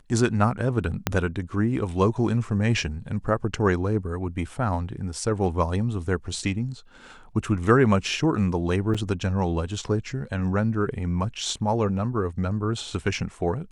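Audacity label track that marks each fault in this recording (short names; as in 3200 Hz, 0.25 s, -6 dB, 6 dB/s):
1.070000	1.070000	pop -6 dBFS
8.940000	8.950000	gap 5.9 ms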